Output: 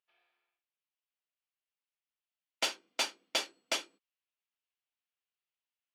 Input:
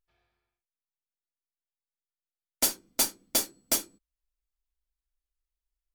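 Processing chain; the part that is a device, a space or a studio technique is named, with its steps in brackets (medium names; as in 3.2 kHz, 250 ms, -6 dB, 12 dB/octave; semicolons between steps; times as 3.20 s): megaphone (band-pass 530–3900 Hz; peaking EQ 2.8 kHz +8 dB 0.58 oct; hard clipper -21 dBFS, distortion -23 dB)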